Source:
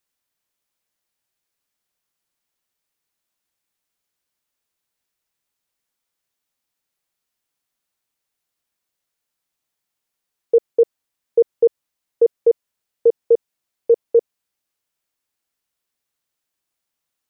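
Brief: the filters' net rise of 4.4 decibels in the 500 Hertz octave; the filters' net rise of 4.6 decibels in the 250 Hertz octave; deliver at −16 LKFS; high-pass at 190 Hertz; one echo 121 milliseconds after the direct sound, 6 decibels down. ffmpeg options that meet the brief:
ffmpeg -i in.wav -af "highpass=190,equalizer=frequency=250:width_type=o:gain=7,equalizer=frequency=500:width_type=o:gain=3,aecho=1:1:121:0.501,volume=-1dB" out.wav

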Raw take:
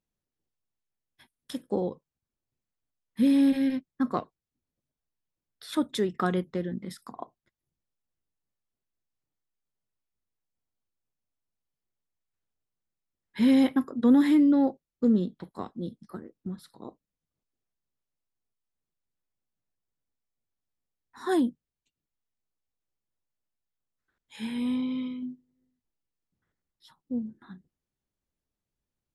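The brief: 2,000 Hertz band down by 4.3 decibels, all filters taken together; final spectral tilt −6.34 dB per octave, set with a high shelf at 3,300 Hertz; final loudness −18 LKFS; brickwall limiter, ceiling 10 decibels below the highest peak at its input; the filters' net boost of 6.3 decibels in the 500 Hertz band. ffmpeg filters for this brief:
ffmpeg -i in.wav -af "equalizer=frequency=500:width_type=o:gain=8,equalizer=frequency=2000:width_type=o:gain=-7.5,highshelf=frequency=3300:gain=4.5,volume=11.5dB,alimiter=limit=-7.5dB:level=0:latency=1" out.wav

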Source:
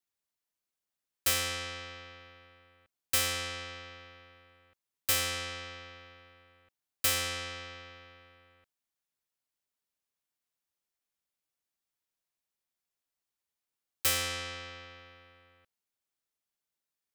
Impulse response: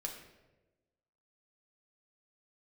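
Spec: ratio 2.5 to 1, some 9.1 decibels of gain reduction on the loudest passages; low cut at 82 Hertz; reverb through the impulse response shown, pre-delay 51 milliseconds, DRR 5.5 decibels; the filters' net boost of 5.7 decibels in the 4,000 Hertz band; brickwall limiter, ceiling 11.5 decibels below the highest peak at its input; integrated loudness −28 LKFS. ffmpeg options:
-filter_complex "[0:a]highpass=82,equalizer=frequency=4000:width_type=o:gain=7.5,acompressor=threshold=-35dB:ratio=2.5,alimiter=level_in=6.5dB:limit=-24dB:level=0:latency=1,volume=-6.5dB,asplit=2[link_01][link_02];[1:a]atrim=start_sample=2205,adelay=51[link_03];[link_02][link_03]afir=irnorm=-1:irlink=0,volume=-4.5dB[link_04];[link_01][link_04]amix=inputs=2:normalize=0,volume=10.5dB"

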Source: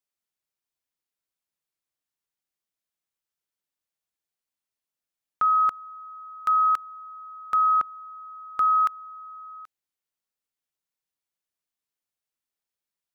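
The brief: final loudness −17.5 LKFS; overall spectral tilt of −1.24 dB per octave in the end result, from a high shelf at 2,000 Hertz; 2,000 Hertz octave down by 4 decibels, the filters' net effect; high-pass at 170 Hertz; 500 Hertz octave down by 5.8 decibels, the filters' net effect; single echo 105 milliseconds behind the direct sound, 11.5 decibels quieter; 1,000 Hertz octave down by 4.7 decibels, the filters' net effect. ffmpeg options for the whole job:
ffmpeg -i in.wav -af "highpass=170,equalizer=frequency=500:width_type=o:gain=-6,equalizer=frequency=1000:width_type=o:gain=-5.5,highshelf=frequency=2000:gain=8.5,equalizer=frequency=2000:width_type=o:gain=-7.5,aecho=1:1:105:0.266,volume=11dB" out.wav

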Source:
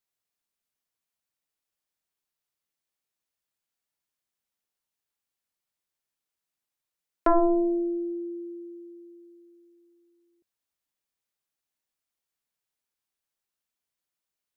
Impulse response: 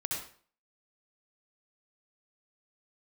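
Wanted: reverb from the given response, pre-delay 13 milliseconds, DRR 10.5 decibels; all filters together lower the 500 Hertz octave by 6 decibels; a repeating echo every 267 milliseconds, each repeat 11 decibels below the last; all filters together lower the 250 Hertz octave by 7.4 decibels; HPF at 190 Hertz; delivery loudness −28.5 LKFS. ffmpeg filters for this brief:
-filter_complex "[0:a]highpass=190,equalizer=frequency=250:width_type=o:gain=-7,equalizer=frequency=500:width_type=o:gain=-7,aecho=1:1:267|534|801:0.282|0.0789|0.0221,asplit=2[link_01][link_02];[1:a]atrim=start_sample=2205,adelay=13[link_03];[link_02][link_03]afir=irnorm=-1:irlink=0,volume=-14dB[link_04];[link_01][link_04]amix=inputs=2:normalize=0,volume=2.5dB"

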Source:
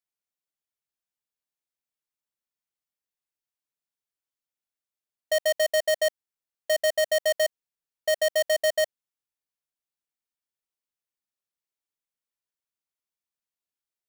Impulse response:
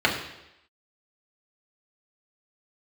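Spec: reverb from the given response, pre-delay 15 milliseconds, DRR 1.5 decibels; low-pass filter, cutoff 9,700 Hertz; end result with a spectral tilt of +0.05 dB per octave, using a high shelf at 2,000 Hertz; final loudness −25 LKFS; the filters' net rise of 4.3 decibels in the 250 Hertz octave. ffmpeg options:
-filter_complex "[0:a]lowpass=9700,equalizer=frequency=250:width_type=o:gain=6,highshelf=frequency=2000:gain=8.5,asplit=2[link_01][link_02];[1:a]atrim=start_sample=2205,adelay=15[link_03];[link_02][link_03]afir=irnorm=-1:irlink=0,volume=-19dB[link_04];[link_01][link_04]amix=inputs=2:normalize=0,volume=-3dB"

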